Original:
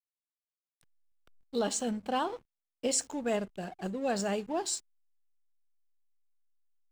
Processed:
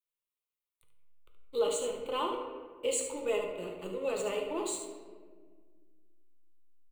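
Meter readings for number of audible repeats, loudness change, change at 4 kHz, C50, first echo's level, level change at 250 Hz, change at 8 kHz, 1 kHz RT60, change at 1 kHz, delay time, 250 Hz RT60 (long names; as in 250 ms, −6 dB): 1, −1.0 dB, −2.0 dB, 3.5 dB, −9.0 dB, −7.5 dB, −3.0 dB, 1.4 s, −3.0 dB, 73 ms, 2.4 s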